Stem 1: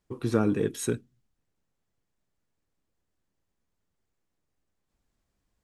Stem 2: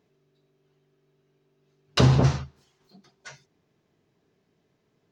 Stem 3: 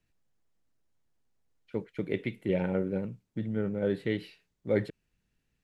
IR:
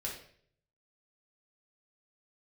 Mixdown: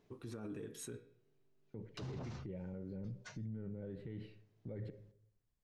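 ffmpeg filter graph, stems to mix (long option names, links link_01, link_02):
-filter_complex "[0:a]bandreject=frequency=160.1:width_type=h:width=4,bandreject=frequency=320.2:width_type=h:width=4,bandreject=frequency=480.3:width_type=h:width=4,bandreject=frequency=640.4:width_type=h:width=4,bandreject=frequency=800.5:width_type=h:width=4,bandreject=frequency=960.6:width_type=h:width=4,bandreject=frequency=1120.7:width_type=h:width=4,bandreject=frequency=1280.8:width_type=h:width=4,bandreject=frequency=1440.9:width_type=h:width=4,bandreject=frequency=1601:width_type=h:width=4,bandreject=frequency=1761.1:width_type=h:width=4,bandreject=frequency=1921.2:width_type=h:width=4,bandreject=frequency=2081.3:width_type=h:width=4,bandreject=frequency=2241.4:width_type=h:width=4,bandreject=frequency=2401.5:width_type=h:width=4,bandreject=frequency=2561.6:width_type=h:width=4,bandreject=frequency=2721.7:width_type=h:width=4,bandreject=frequency=2881.8:width_type=h:width=4,bandreject=frequency=3041.9:width_type=h:width=4,bandreject=frequency=3202:width_type=h:width=4,bandreject=frequency=3362.1:width_type=h:width=4,bandreject=frequency=3522.2:width_type=h:width=4,bandreject=frequency=3682.3:width_type=h:width=4,bandreject=frequency=3842.4:width_type=h:width=4,bandreject=frequency=4002.5:width_type=h:width=4,bandreject=frequency=4162.6:width_type=h:width=4,bandreject=frequency=4322.7:width_type=h:width=4,volume=-14.5dB,asplit=3[link_01][link_02][link_03];[link_02]volume=-13.5dB[link_04];[1:a]alimiter=limit=-16.5dB:level=0:latency=1:release=493,volume=-2.5dB,afade=type=out:start_time=1.25:duration=0.29:silence=0.421697[link_05];[2:a]aemphasis=mode=reproduction:type=riaa,agate=range=-14dB:threshold=-51dB:ratio=16:detection=peak,volume=-11.5dB,asplit=2[link_06][link_07];[link_07]volume=-14dB[link_08];[link_03]apad=whole_len=225494[link_09];[link_05][link_09]sidechaincompress=threshold=-52dB:ratio=8:attack=40:release=853[link_10];[3:a]atrim=start_sample=2205[link_11];[link_04][link_08]amix=inputs=2:normalize=0[link_12];[link_12][link_11]afir=irnorm=-1:irlink=0[link_13];[link_01][link_10][link_06][link_13]amix=inputs=4:normalize=0,alimiter=level_in=13.5dB:limit=-24dB:level=0:latency=1:release=45,volume=-13.5dB"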